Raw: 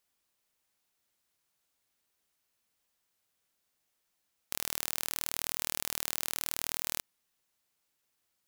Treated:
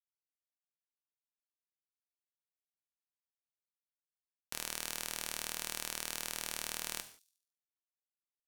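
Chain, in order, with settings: treble shelf 7.8 kHz -9.5 dB; peak limiter -17 dBFS, peak gain reduction 5.5 dB; bit crusher 4-bit; on a send: feedback echo behind a high-pass 72 ms, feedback 48%, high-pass 5 kHz, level -17 dB; on the sum: gated-style reverb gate 200 ms falling, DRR 7.5 dB; trim +2.5 dB

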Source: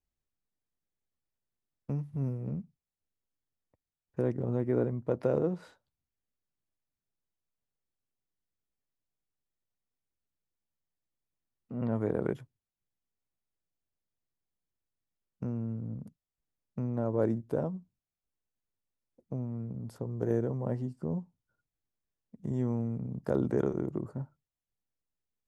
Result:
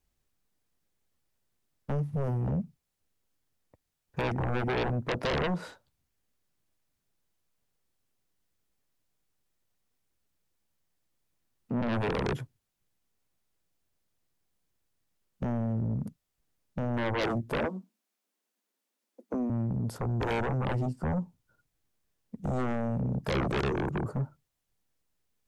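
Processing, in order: 17.58–19.50 s: steep high-pass 200 Hz 96 dB/octave; in parallel at -5 dB: sine folder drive 18 dB, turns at -15 dBFS; on the sum: trim -7.5 dB

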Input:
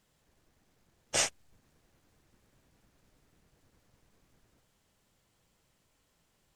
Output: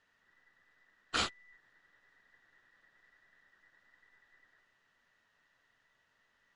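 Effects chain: every band turned upside down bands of 2 kHz; low-pass 3.8 kHz 12 dB/octave

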